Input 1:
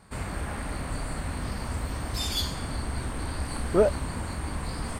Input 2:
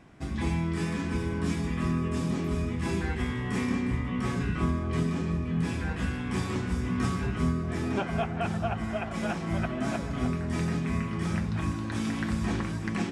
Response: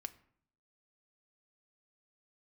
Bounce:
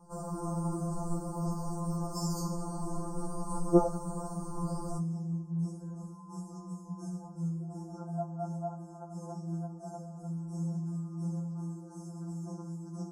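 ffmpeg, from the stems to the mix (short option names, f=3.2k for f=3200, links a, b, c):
-filter_complex "[0:a]equalizer=f=11k:w=2.1:g=-13.5,volume=1dB[a];[1:a]highpass=f=63:w=0.5412,highpass=f=63:w=1.3066,volume=-10.5dB,asplit=2[b][c];[c]volume=-7.5dB[d];[2:a]atrim=start_sample=2205[e];[d][e]afir=irnorm=-1:irlink=0[f];[a][b][f]amix=inputs=3:normalize=0,adynamicequalizer=threshold=0.00282:dfrequency=110:dqfactor=7.9:tfrequency=110:tqfactor=7.9:attack=5:release=100:ratio=0.375:range=2.5:mode=cutabove:tftype=bell,asuperstop=centerf=2600:order=12:qfactor=0.61,afftfilt=real='re*2.83*eq(mod(b,8),0)':imag='im*2.83*eq(mod(b,8),0)':win_size=2048:overlap=0.75"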